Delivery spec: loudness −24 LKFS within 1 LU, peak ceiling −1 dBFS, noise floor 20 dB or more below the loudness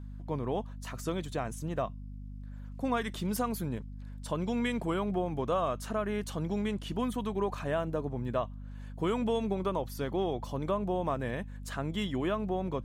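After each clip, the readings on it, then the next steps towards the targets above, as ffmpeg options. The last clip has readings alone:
mains hum 50 Hz; hum harmonics up to 250 Hz; level of the hum −40 dBFS; integrated loudness −33.5 LKFS; sample peak −17.5 dBFS; target loudness −24.0 LKFS
→ -af "bandreject=frequency=50:width_type=h:width=6,bandreject=frequency=100:width_type=h:width=6,bandreject=frequency=150:width_type=h:width=6,bandreject=frequency=200:width_type=h:width=6,bandreject=frequency=250:width_type=h:width=6"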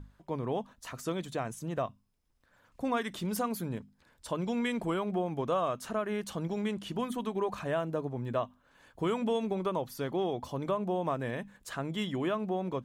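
mains hum none found; integrated loudness −34.0 LKFS; sample peak −18.0 dBFS; target loudness −24.0 LKFS
→ -af "volume=10dB"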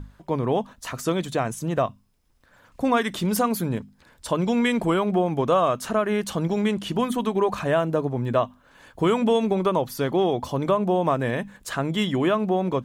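integrated loudness −24.0 LKFS; sample peak −8.0 dBFS; background noise floor −59 dBFS

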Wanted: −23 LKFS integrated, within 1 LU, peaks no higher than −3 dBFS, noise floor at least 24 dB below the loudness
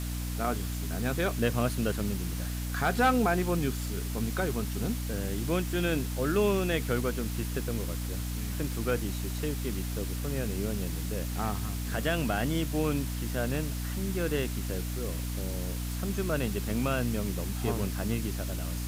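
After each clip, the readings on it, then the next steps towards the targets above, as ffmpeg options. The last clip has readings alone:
mains hum 60 Hz; hum harmonics up to 300 Hz; level of the hum −31 dBFS; background noise floor −34 dBFS; target noise floor −55 dBFS; integrated loudness −31.0 LKFS; sample peak −13.5 dBFS; target loudness −23.0 LKFS
→ -af "bandreject=frequency=60:width_type=h:width=6,bandreject=frequency=120:width_type=h:width=6,bandreject=frequency=180:width_type=h:width=6,bandreject=frequency=240:width_type=h:width=6,bandreject=frequency=300:width_type=h:width=6"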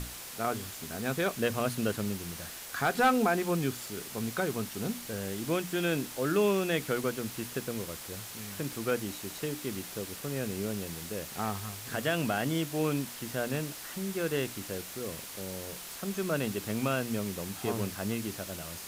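mains hum none found; background noise floor −44 dBFS; target noise floor −57 dBFS
→ -af "afftdn=noise_reduction=13:noise_floor=-44"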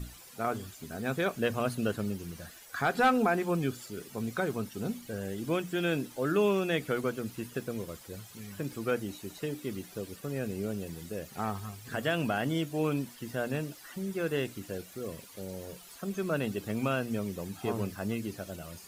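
background noise floor −52 dBFS; target noise floor −58 dBFS
→ -af "afftdn=noise_reduction=6:noise_floor=-52"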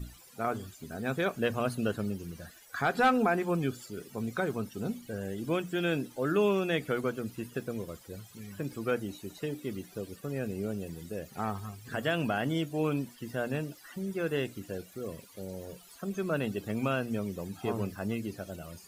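background noise floor −55 dBFS; target noise floor −58 dBFS
→ -af "afftdn=noise_reduction=6:noise_floor=-55"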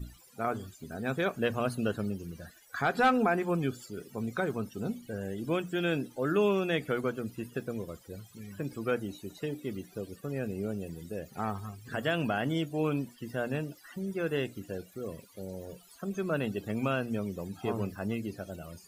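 background noise floor −58 dBFS; integrated loudness −33.5 LKFS; sample peak −14.5 dBFS; target loudness −23.0 LKFS
→ -af "volume=10.5dB"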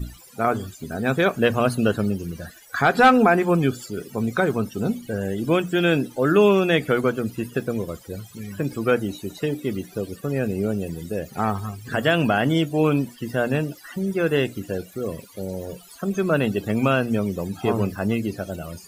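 integrated loudness −23.0 LKFS; sample peak −4.0 dBFS; background noise floor −47 dBFS

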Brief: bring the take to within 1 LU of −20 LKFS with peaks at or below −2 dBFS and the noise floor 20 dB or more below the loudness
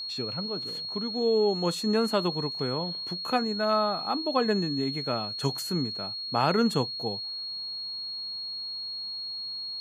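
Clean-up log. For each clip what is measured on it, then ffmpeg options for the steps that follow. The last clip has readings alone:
interfering tone 4,300 Hz; level of the tone −33 dBFS; integrated loudness −28.5 LKFS; sample peak −11.0 dBFS; target loudness −20.0 LKFS
→ -af "bandreject=frequency=4300:width=30"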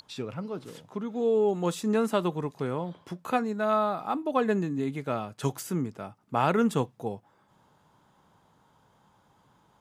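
interfering tone none found; integrated loudness −29.0 LKFS; sample peak −12.0 dBFS; target loudness −20.0 LKFS
→ -af "volume=9dB"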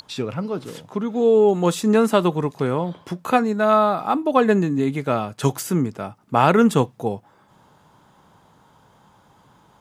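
integrated loudness −20.0 LKFS; sample peak −3.0 dBFS; background noise floor −56 dBFS

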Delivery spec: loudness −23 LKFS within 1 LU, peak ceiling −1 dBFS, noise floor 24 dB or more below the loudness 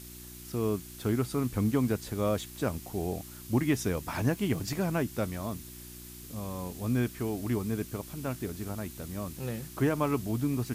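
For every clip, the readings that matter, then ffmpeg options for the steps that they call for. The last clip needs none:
mains hum 60 Hz; hum harmonics up to 360 Hz; level of the hum −49 dBFS; background noise floor −46 dBFS; target noise floor −56 dBFS; integrated loudness −32.0 LKFS; sample peak −13.5 dBFS; target loudness −23.0 LKFS
→ -af "bandreject=frequency=60:width_type=h:width=4,bandreject=frequency=120:width_type=h:width=4,bandreject=frequency=180:width_type=h:width=4,bandreject=frequency=240:width_type=h:width=4,bandreject=frequency=300:width_type=h:width=4,bandreject=frequency=360:width_type=h:width=4"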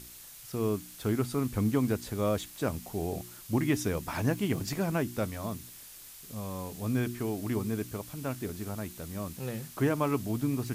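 mains hum none found; background noise floor −49 dBFS; target noise floor −57 dBFS
→ -af "afftdn=noise_reduction=8:noise_floor=-49"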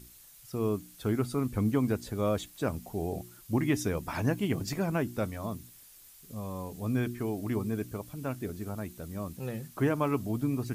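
background noise floor −54 dBFS; target noise floor −57 dBFS
→ -af "afftdn=noise_reduction=6:noise_floor=-54"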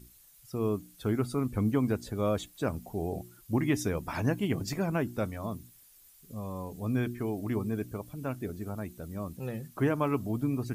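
background noise floor −58 dBFS; integrated loudness −32.5 LKFS; sample peak −14.0 dBFS; target loudness −23.0 LKFS
→ -af "volume=9.5dB"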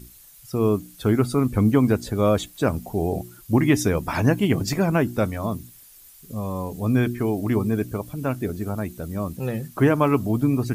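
integrated loudness −23.0 LKFS; sample peak −4.5 dBFS; background noise floor −49 dBFS

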